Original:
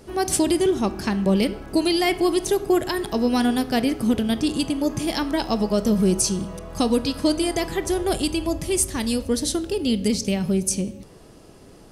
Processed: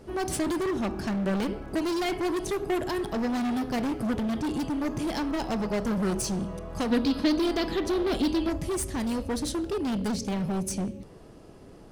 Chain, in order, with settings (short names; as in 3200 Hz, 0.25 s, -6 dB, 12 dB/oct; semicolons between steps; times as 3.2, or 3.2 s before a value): high shelf 2900 Hz -9 dB; in parallel at +2 dB: wavefolder -24 dBFS; 6.91–8.5 on the sum: graphic EQ 125/250/4000/8000 Hz -9/+8/+11/-8 dB; gain -8.5 dB